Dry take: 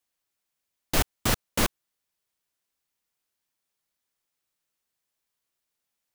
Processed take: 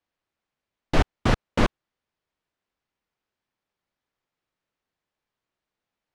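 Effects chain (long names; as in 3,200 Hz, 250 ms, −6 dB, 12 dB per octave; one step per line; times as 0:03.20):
head-to-tape spacing loss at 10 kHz 26 dB
level +6.5 dB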